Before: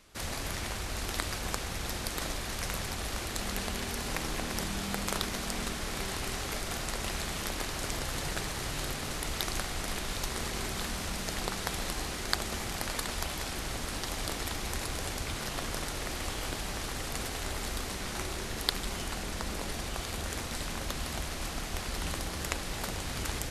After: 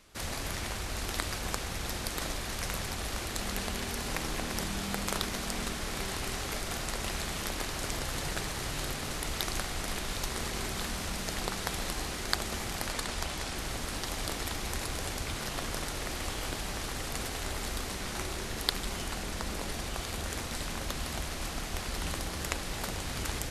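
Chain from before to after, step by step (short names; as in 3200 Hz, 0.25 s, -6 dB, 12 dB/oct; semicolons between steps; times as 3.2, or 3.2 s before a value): 12.92–13.58 LPF 11000 Hz 12 dB/oct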